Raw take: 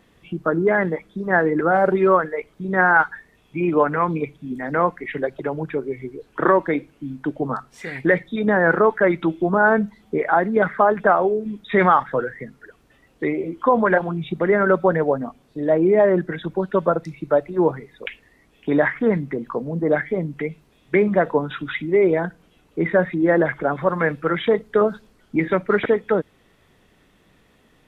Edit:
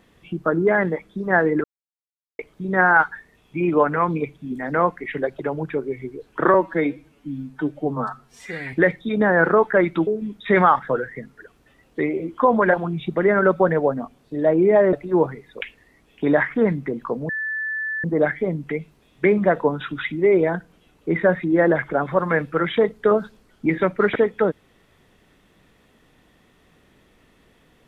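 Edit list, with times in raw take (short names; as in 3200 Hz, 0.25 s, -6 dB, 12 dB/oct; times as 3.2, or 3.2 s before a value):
1.64–2.39 mute
6.54–8 stretch 1.5×
9.34–11.31 cut
16.17–17.38 cut
19.74 add tone 1750 Hz -23.5 dBFS 0.75 s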